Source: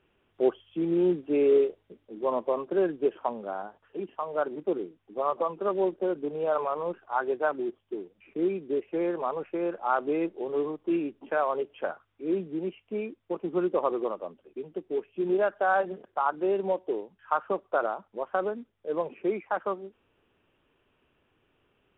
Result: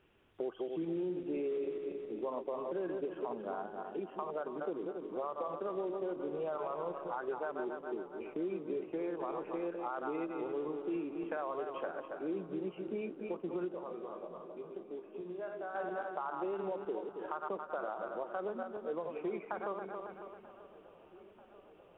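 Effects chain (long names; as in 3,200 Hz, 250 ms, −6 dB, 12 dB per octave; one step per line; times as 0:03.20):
feedback delay that plays each chunk backwards 137 ms, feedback 60%, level −8 dB
brickwall limiter −20 dBFS, peak gain reduction 8.5 dB
downward compressor 2.5 to 1, threshold −39 dBFS, peak gain reduction 10.5 dB
0:13.72–0:15.75: tuned comb filter 57 Hz, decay 0.25 s, harmonics all, mix 80%
feedback echo with a low-pass in the loop 938 ms, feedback 78%, low-pass 2,000 Hz, level −20 dB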